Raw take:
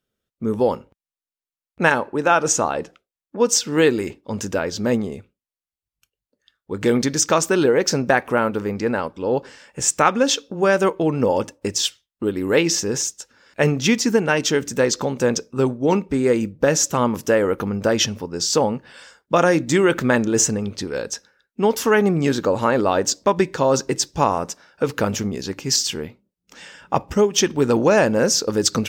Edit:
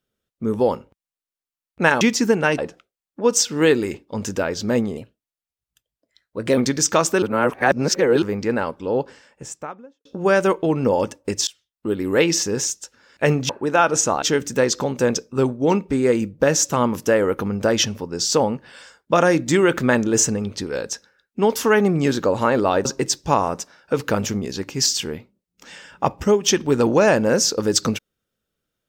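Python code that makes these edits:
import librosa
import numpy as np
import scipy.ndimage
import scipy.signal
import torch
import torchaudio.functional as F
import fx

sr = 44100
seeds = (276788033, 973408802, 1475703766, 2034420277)

y = fx.studio_fade_out(x, sr, start_s=9.11, length_s=1.31)
y = fx.edit(y, sr, fx.swap(start_s=2.01, length_s=0.73, other_s=13.86, other_length_s=0.57),
    fx.speed_span(start_s=5.13, length_s=1.81, speed=1.13),
    fx.reverse_span(start_s=7.59, length_s=1.0),
    fx.fade_in_from(start_s=11.84, length_s=0.47, floor_db=-24.0),
    fx.cut(start_s=23.06, length_s=0.69), tone=tone)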